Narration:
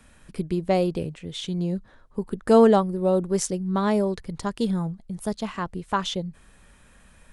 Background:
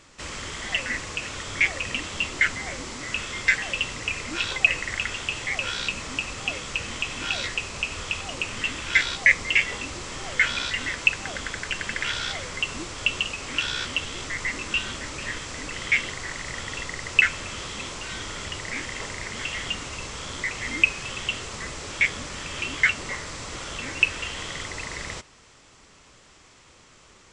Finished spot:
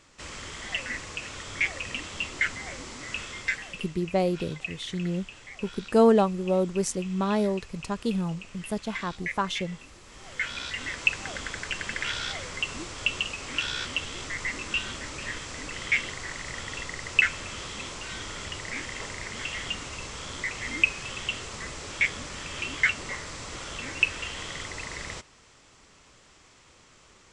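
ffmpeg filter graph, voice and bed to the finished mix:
-filter_complex "[0:a]adelay=3450,volume=-3dB[a];[1:a]volume=8.5dB,afade=t=out:st=3.21:d=0.72:silence=0.266073,afade=t=in:st=10.04:d=1.11:silence=0.211349[b];[a][b]amix=inputs=2:normalize=0"

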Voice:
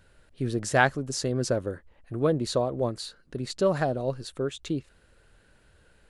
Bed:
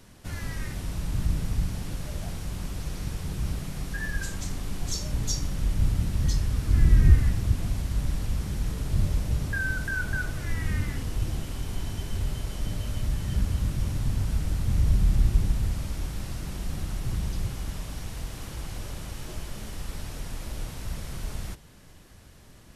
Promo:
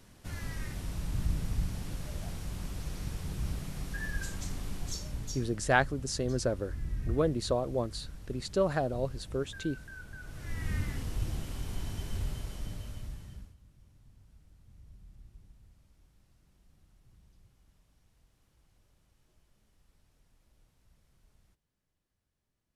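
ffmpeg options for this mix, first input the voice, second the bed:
-filter_complex "[0:a]adelay=4950,volume=-4dB[a];[1:a]volume=7.5dB,afade=t=out:st=4.66:d=0.96:silence=0.237137,afade=t=in:st=10.2:d=0.55:silence=0.237137,afade=t=out:st=12.16:d=1.39:silence=0.0421697[b];[a][b]amix=inputs=2:normalize=0"

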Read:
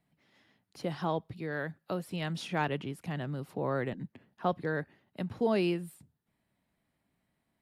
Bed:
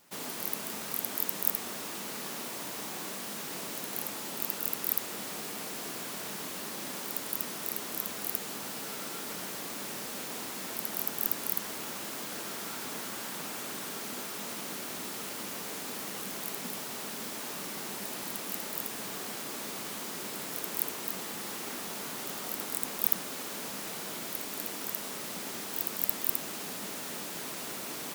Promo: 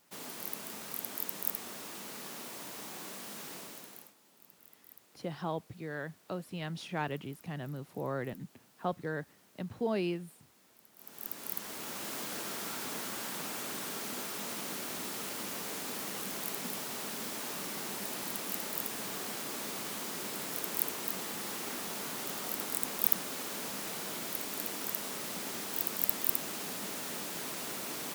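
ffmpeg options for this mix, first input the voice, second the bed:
-filter_complex "[0:a]adelay=4400,volume=-4dB[a];[1:a]volume=20dB,afade=t=out:st=3.47:d=0.67:silence=0.0944061,afade=t=in:st=10.96:d=1.18:silence=0.0530884[b];[a][b]amix=inputs=2:normalize=0"

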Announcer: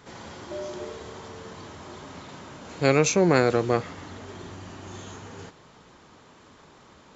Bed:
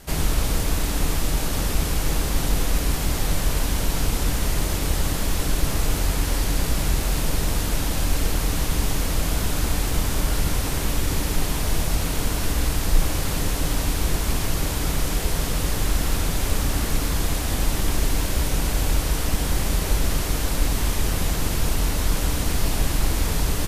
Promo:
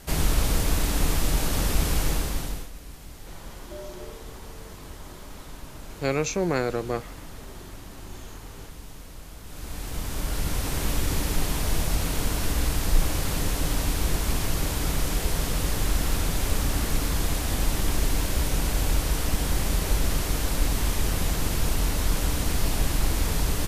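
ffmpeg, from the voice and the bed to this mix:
-filter_complex "[0:a]adelay=3200,volume=-5.5dB[a];[1:a]volume=16.5dB,afade=t=out:st=1.99:d=0.71:silence=0.112202,afade=t=in:st=9.43:d=1.45:silence=0.133352[b];[a][b]amix=inputs=2:normalize=0"

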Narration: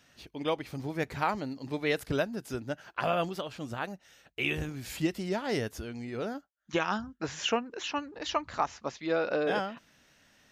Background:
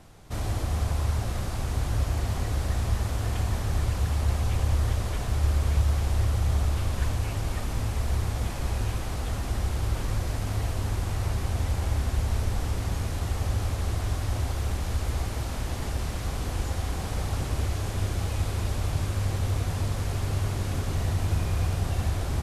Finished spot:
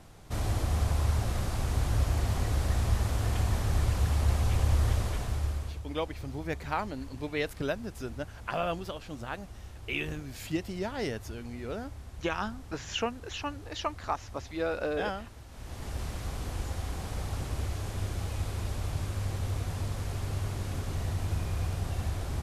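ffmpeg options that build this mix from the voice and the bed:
-filter_complex "[0:a]adelay=5500,volume=-2.5dB[a];[1:a]volume=11.5dB,afade=t=out:st=4.97:d=0.83:silence=0.141254,afade=t=in:st=15.5:d=0.51:silence=0.237137[b];[a][b]amix=inputs=2:normalize=0"

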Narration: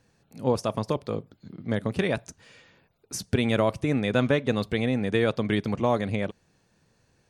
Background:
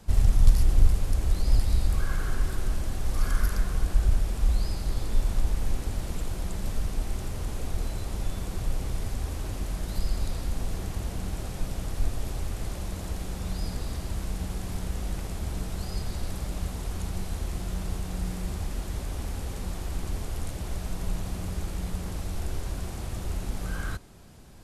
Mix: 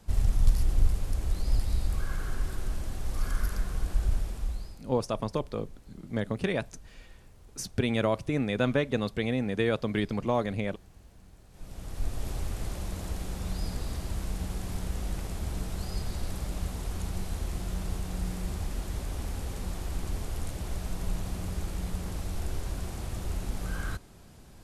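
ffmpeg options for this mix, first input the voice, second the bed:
-filter_complex "[0:a]adelay=4450,volume=-3.5dB[a];[1:a]volume=16dB,afade=t=out:st=4.17:d=0.66:silence=0.133352,afade=t=in:st=11.5:d=0.81:silence=0.0944061[b];[a][b]amix=inputs=2:normalize=0"

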